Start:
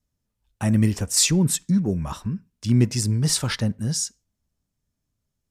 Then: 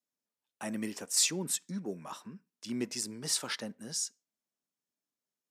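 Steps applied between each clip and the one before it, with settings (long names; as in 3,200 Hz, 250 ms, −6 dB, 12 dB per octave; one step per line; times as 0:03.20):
Bessel high-pass filter 340 Hz, order 4
level −8 dB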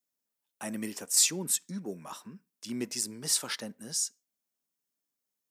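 high-shelf EQ 9,000 Hz +10.5 dB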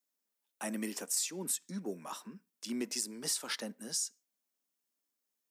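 high-pass filter 190 Hz 24 dB per octave
downward compressor 8 to 1, threshold −31 dBFS, peak gain reduction 12.5 dB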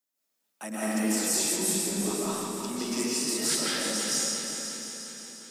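feedback delay that plays each chunk backwards 176 ms, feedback 73%, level −6 dB
feedback echo with a long and a short gap by turns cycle 891 ms, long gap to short 1.5 to 1, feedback 32%, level −14 dB
comb and all-pass reverb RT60 1.7 s, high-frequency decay 0.8×, pre-delay 115 ms, DRR −8.5 dB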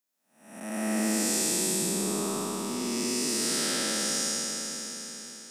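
spectrum smeared in time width 340 ms
level +2 dB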